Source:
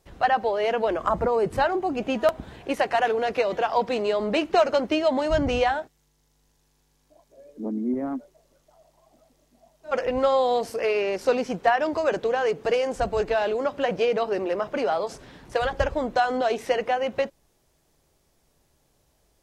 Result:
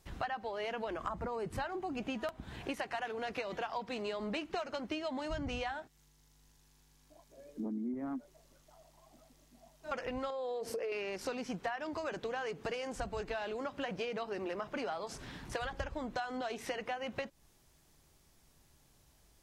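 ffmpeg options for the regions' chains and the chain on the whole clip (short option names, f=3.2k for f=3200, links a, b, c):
-filter_complex "[0:a]asettb=1/sr,asplit=3[a][b][c];[a]atrim=end=10.304[d];[b]atrim=start=10.3:end=10.92,asetpts=PTS-STARTPTS,afade=t=in:d=0.004:c=qsin,afade=t=out:st=0.616:d=0.004:c=qsin,equalizer=f=470:t=o:w=0.74:g=14.5,bandreject=f=60:t=h:w=6,bandreject=f=120:t=h:w=6,bandreject=f=180:t=h:w=6,bandreject=f=240:t=h:w=6,bandreject=f=300:t=h:w=6,acompressor=threshold=-22dB:ratio=4:attack=3.2:release=140:knee=1:detection=peak[e];[c]atrim=start=10.916[f];[d][e]acrossfade=d=0.004:c1=hsin:c2=qsin[g];[g][f]acrossfade=d=0.004:c1=qsin:c2=hsin,equalizer=f=520:w=1.2:g=-7.5,acompressor=threshold=-37dB:ratio=6,volume=1dB"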